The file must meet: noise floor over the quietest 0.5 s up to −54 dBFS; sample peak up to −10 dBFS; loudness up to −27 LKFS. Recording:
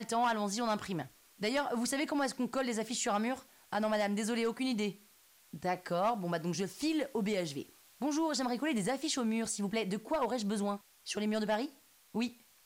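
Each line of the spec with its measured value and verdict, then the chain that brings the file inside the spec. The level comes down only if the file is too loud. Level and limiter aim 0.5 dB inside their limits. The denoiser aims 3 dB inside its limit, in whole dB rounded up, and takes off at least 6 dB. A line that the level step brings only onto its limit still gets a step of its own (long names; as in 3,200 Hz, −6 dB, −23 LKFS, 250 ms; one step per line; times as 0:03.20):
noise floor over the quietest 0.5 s −64 dBFS: in spec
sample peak −22.0 dBFS: in spec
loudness −34.5 LKFS: in spec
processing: no processing needed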